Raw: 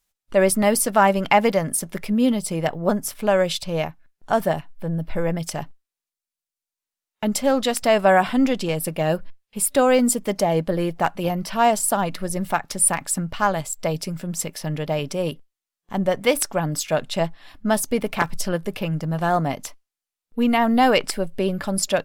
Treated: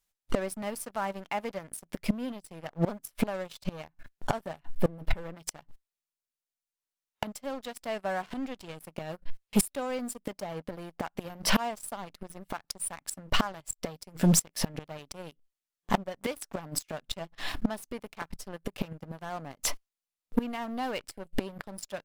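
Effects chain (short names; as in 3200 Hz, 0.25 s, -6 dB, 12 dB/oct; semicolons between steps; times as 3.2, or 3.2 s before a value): flipped gate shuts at -18 dBFS, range -28 dB; sample leveller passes 3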